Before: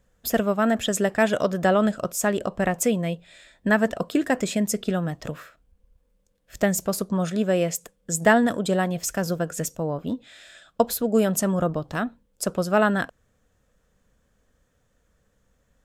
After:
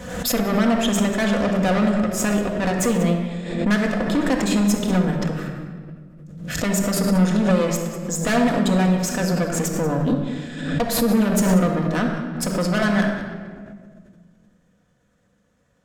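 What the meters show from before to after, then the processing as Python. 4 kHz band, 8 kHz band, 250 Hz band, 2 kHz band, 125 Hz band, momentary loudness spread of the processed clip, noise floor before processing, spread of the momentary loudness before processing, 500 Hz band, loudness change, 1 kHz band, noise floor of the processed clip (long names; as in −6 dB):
+5.5 dB, +2.0 dB, +6.0 dB, +1.0 dB, +7.0 dB, 11 LU, −68 dBFS, 10 LU, +0.5 dB, +3.0 dB, +1.0 dB, −64 dBFS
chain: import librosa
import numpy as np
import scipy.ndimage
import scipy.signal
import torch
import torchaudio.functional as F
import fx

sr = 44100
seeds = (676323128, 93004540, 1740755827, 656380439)

p1 = scipy.signal.sosfilt(scipy.signal.butter(2, 90.0, 'highpass', fs=sr, output='sos'), x)
p2 = fx.high_shelf(p1, sr, hz=11000.0, db=-10.5)
p3 = fx.notch(p2, sr, hz=430.0, q=12.0)
p4 = fx.rider(p3, sr, range_db=10, speed_s=2.0)
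p5 = p3 + F.gain(torch.from_numpy(p4), -2.5).numpy()
p6 = np.clip(p5, -10.0 ** (-14.0 / 20.0), 10.0 ** (-14.0 / 20.0))
p7 = fx.tube_stage(p6, sr, drive_db=19.0, bias=0.6)
p8 = fx.wow_flutter(p7, sr, seeds[0], rate_hz=2.1, depth_cents=29.0)
p9 = p8 + fx.echo_single(p8, sr, ms=187, db=-16.5, dry=0)
p10 = fx.room_shoebox(p9, sr, seeds[1], volume_m3=2300.0, walls='mixed', distance_m=1.9)
y = fx.pre_swell(p10, sr, db_per_s=54.0)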